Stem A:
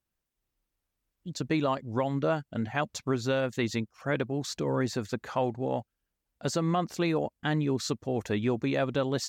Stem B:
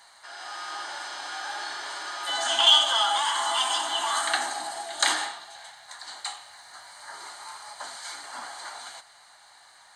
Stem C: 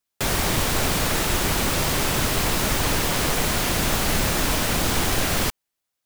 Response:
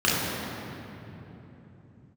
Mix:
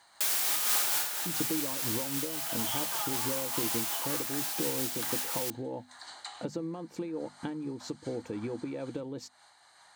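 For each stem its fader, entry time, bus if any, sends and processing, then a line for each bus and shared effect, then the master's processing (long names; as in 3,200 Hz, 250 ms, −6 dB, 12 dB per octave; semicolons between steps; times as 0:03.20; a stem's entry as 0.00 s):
+2.0 dB, 0.00 s, bus A, no send, downward compressor, threshold −31 dBFS, peak gain reduction 9 dB; hollow resonant body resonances 320/480/880/2,300 Hz, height 13 dB, ringing for 45 ms
−4.0 dB, 0.00 s, bus A, no send, treble cut that deepens with the level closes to 1,900 Hz, closed at −22.5 dBFS
−11.5 dB, 0.00 s, no bus, no send, high-pass filter 320 Hz 6 dB per octave; spectral tilt +4 dB per octave; automatic ducking −6 dB, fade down 0.55 s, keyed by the first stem
bus A: 0.0 dB, low-shelf EQ 390 Hz +7 dB; downward compressor 3 to 1, threshold −34 dBFS, peak gain reduction 15 dB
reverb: not used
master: high-pass filter 83 Hz; mains-hum notches 50/100/150/200/250 Hz; amplitude modulation by smooth noise, depth 60%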